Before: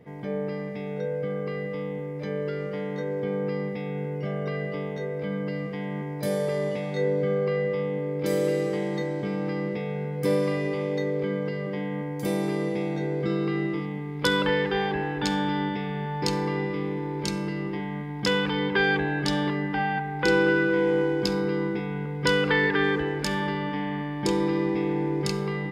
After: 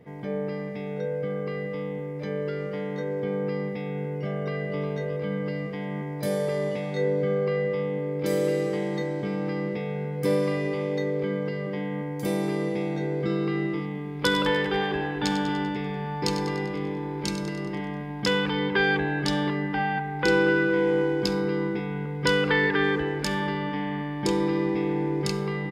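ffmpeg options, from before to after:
-filter_complex "[0:a]asplit=2[s0][s1];[s1]afade=t=in:st=4.33:d=0.01,afade=t=out:st=4.8:d=0.01,aecho=0:1:360|720|1080|1440|1800|2160:0.421697|0.210848|0.105424|0.0527121|0.026356|0.013178[s2];[s0][s2]amix=inputs=2:normalize=0,asettb=1/sr,asplit=3[s3][s4][s5];[s3]atrim=end=13.854[s6];[s4]atrim=start=13.85:end=18.24,asetpts=PTS-STARTPTS,afade=t=in:d=0.004:c=qsin,afade=t=out:st=4.386:d=0.004:c=qsin,aecho=1:1:98|196|294|392|490|588|686:0.299|0.173|0.1|0.0582|0.0338|0.0196|0.0114,atrim=end_sample=193599[s7];[s5]atrim=start=18.236[s8];[s6][s7]acrossfade=d=0.004:c1=hsin:c2=qsin[s9];[s9][s8]acrossfade=d=0.004:c1=qsin:c2=hsin"

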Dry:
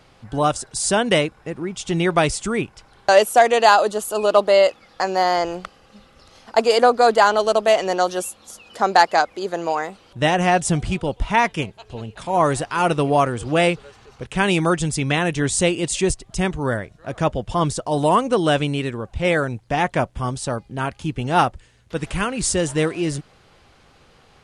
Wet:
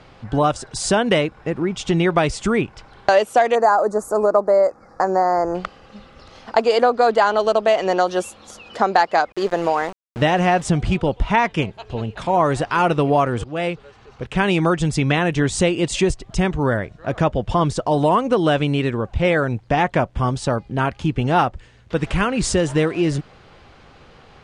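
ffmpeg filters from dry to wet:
-filter_complex "[0:a]asettb=1/sr,asplit=3[s0][s1][s2];[s0]atrim=end=3.554[s3];[s1]atrim=start=3.55:end=5.55,asetpts=PTS-STARTPTS,afade=t=in:d=0.004:c=qsin,afade=t=out:st=1.996:d=0.004:c=qsin,asuperstop=centerf=3100:order=4:qfactor=0.66[s4];[s2]atrim=start=5.546[s5];[s3][s4]acrossfade=d=0.004:c1=hsin:c2=qsin[s6];[s6][s5]acrossfade=d=0.004:c1=qsin:c2=hsin,asettb=1/sr,asplit=3[s7][s8][s9];[s7]atrim=end=9.324[s10];[s8]atrim=start=9.32:end=10.68,asetpts=PTS-STARTPTS,afade=t=in:d=0.004:c=qsin,afade=t=out:st=1.356:d=0.004:c=qsin,aeval=exprs='val(0)*gte(abs(val(0)),0.0237)':c=same[s11];[s9]atrim=start=10.676[s12];[s10][s11]acrossfade=d=0.004:c1=hsin:c2=qsin[s13];[s13][s12]acrossfade=d=0.004:c1=qsin:c2=hsin,asplit=2[s14][s15];[s14]atrim=end=13.44,asetpts=PTS-STARTPTS,afade=t=out:st=13.436:d=0.004:c=hsin:silence=0.11885[s16];[s15]atrim=start=13.44,asetpts=PTS-STARTPTS,afade=t=in:d=1.23:silence=0.11885[s17];[s16][s17]concat=n=2:v=0:a=1,lowpass=8700,highshelf=f=5600:g=-11.5,acompressor=threshold=0.0794:ratio=2.5,volume=2.11"

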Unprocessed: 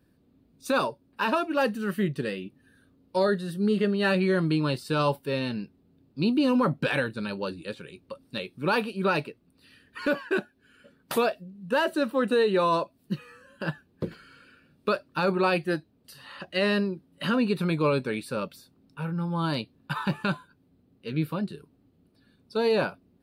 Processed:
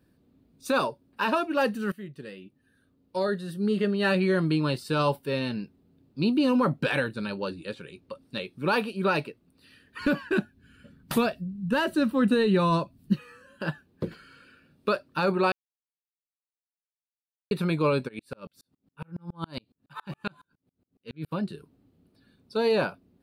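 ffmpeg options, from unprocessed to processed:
-filter_complex "[0:a]asettb=1/sr,asplit=3[s0][s1][s2];[s0]atrim=end=7.274[s3];[s1]atrim=start=7.27:end=8.57,asetpts=PTS-STARTPTS,afade=t=in:d=0.004:c=qsin,afade=t=out:st=1.296:d=0.004:c=qsin,highshelf=f=12000:g=-7.5[s4];[s2]atrim=start=8.566[s5];[s3][s4]acrossfade=d=0.004:c1=hsin:c2=qsin[s6];[s6][s5]acrossfade=d=0.004:c1=qsin:c2=hsin,asplit=3[s7][s8][s9];[s7]afade=t=out:st=9.99:d=0.02[s10];[s8]asubboost=boost=5.5:cutoff=200,afade=t=in:st=9.99:d=0.02,afade=t=out:st=13.12:d=0.02[s11];[s9]afade=t=in:st=13.12:d=0.02[s12];[s10][s11][s12]amix=inputs=3:normalize=0,asplit=3[s13][s14][s15];[s13]afade=t=out:st=18.07:d=0.02[s16];[s14]aeval=exprs='val(0)*pow(10,-39*if(lt(mod(-7.2*n/s,1),2*abs(-7.2)/1000),1-mod(-7.2*n/s,1)/(2*abs(-7.2)/1000),(mod(-7.2*n/s,1)-2*abs(-7.2)/1000)/(1-2*abs(-7.2)/1000))/20)':c=same,afade=t=in:st=18.07:d=0.02,afade=t=out:st=21.31:d=0.02[s17];[s15]afade=t=in:st=21.31:d=0.02[s18];[s16][s17][s18]amix=inputs=3:normalize=0,asplit=4[s19][s20][s21][s22];[s19]atrim=end=1.92,asetpts=PTS-STARTPTS,afade=t=out:st=1.916:d=0.004:c=hsin:silence=0.158489[s23];[s20]atrim=start=1.92:end=15.52,asetpts=PTS-STARTPTS,afade=t=in:d=2.2:silence=0.158489,afade=t=out:st=13.596:d=0.004:c=hsin[s24];[s21]atrim=start=15.52:end=17.51,asetpts=PTS-STARTPTS,volume=0[s25];[s22]atrim=start=17.51,asetpts=PTS-STARTPTS,afade=t=in:d=0.004:c=hsin[s26];[s23][s24][s25][s26]concat=n=4:v=0:a=1"

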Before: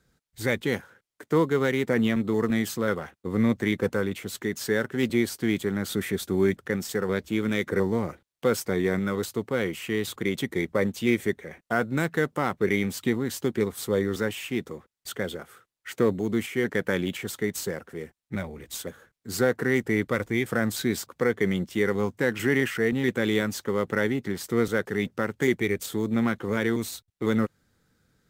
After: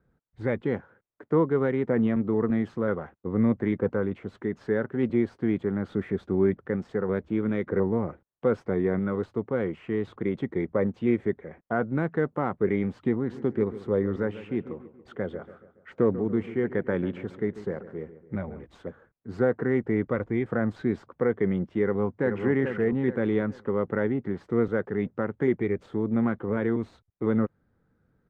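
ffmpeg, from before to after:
-filter_complex "[0:a]asplit=3[s0][s1][s2];[s0]afade=t=out:st=13.28:d=0.02[s3];[s1]asplit=2[s4][s5];[s5]adelay=141,lowpass=f=2500:p=1,volume=0.2,asplit=2[s6][s7];[s7]adelay=141,lowpass=f=2500:p=1,volume=0.5,asplit=2[s8][s9];[s9]adelay=141,lowpass=f=2500:p=1,volume=0.5,asplit=2[s10][s11];[s11]adelay=141,lowpass=f=2500:p=1,volume=0.5,asplit=2[s12][s13];[s13]adelay=141,lowpass=f=2500:p=1,volume=0.5[s14];[s4][s6][s8][s10][s12][s14]amix=inputs=6:normalize=0,afade=t=in:st=13.28:d=0.02,afade=t=out:st=18.62:d=0.02[s15];[s2]afade=t=in:st=18.62:d=0.02[s16];[s3][s15][s16]amix=inputs=3:normalize=0,asplit=2[s17][s18];[s18]afade=t=in:st=21.82:d=0.01,afade=t=out:st=22.41:d=0.01,aecho=0:1:430|860|1290|1720:0.473151|0.165603|0.057961|0.0202864[s19];[s17][s19]amix=inputs=2:normalize=0,lowpass=1200"

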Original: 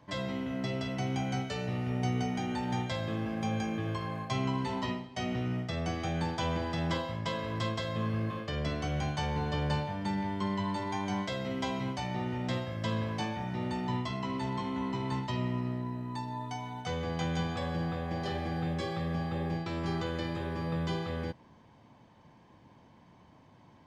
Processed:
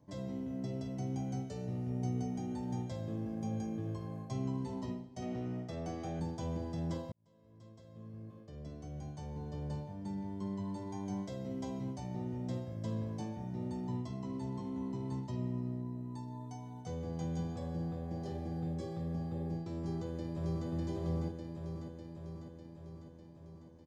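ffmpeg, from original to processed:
-filter_complex "[0:a]asettb=1/sr,asplit=3[s0][s1][s2];[s0]atrim=end=5.224[s3];[s1]atrim=start=5.22:end=6.2,asetpts=PTS-STARTPTS,afade=t=in:d=0.004:c=qsin,afade=t=out:st=0.976:d=0.004:c=qsin,asplit=2[s4][s5];[s5]highpass=f=720:p=1,volume=4.47,asoftclip=type=tanh:threshold=0.0891[s6];[s4][s6]amix=inputs=2:normalize=0,lowpass=f=2800:p=1,volume=0.501[s7];[s2]atrim=start=6.196[s8];[s3][s7]acrossfade=d=0.004:c1=hsin:c2=qsin[s9];[s9][s8]acrossfade=d=0.004:c1=qsin:c2=hsin,asplit=2[s10][s11];[s11]afade=t=in:st=19.76:d=0.01,afade=t=out:st=20.68:d=0.01,aecho=0:1:600|1200|1800|2400|3000|3600|4200|4800|5400|6000|6600:0.944061|0.61364|0.398866|0.259263|0.168521|0.109538|0.0712|0.04628|0.030082|0.0195533|0.0127096[s12];[s10][s12]amix=inputs=2:normalize=0,asplit=2[s13][s14];[s13]atrim=end=7.12,asetpts=PTS-STARTPTS,afade=t=out:st=7.116:d=0.004:c=hsin[s15];[s14]atrim=start=7.12,asetpts=PTS-STARTPTS,afade=t=in:d=3.98[s16];[s15][s16]concat=n=2:v=0:a=1,firequalizer=gain_entry='entry(310,0);entry(1300,-15);entry(2800,-17);entry(6100,-3)':delay=0.05:min_phase=1,volume=0.631"

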